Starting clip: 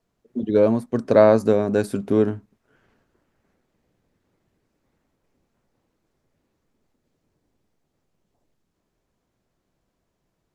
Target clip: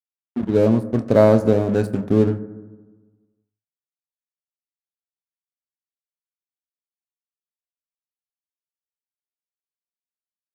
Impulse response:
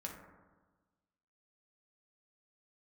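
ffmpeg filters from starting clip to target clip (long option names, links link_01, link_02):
-filter_complex "[0:a]lowshelf=frequency=240:gain=11.5,aeval=exprs='sgn(val(0))*max(abs(val(0))-0.0266,0)':channel_layout=same,asplit=2[link_01][link_02];[1:a]atrim=start_sample=2205,adelay=26[link_03];[link_02][link_03]afir=irnorm=-1:irlink=0,volume=-9dB[link_04];[link_01][link_04]amix=inputs=2:normalize=0,volume=-2dB"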